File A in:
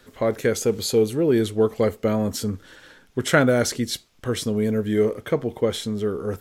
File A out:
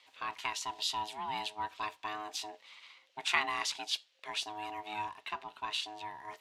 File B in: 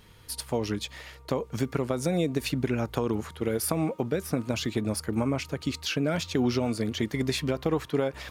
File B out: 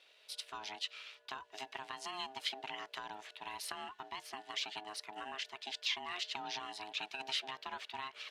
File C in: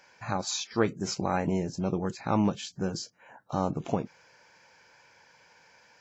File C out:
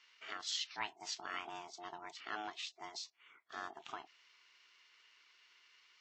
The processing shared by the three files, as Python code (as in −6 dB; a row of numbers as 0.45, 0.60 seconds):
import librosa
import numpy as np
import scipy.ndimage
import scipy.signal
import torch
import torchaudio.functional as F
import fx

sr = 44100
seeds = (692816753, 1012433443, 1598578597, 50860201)

y = x * np.sin(2.0 * np.pi * 530.0 * np.arange(len(x)) / sr)
y = fx.bandpass_q(y, sr, hz=3200.0, q=1.7)
y = y * 10.0 ** (1.5 / 20.0)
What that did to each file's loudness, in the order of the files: −14.0, −12.5, −13.5 LU